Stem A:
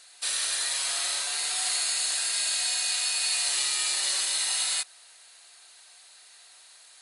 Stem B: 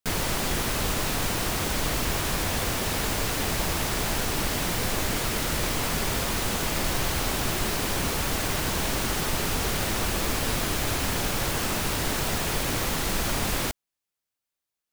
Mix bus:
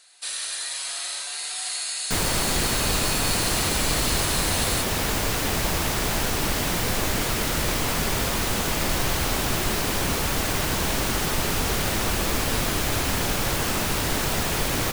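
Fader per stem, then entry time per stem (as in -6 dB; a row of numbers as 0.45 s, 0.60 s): -2.0 dB, +2.5 dB; 0.00 s, 2.05 s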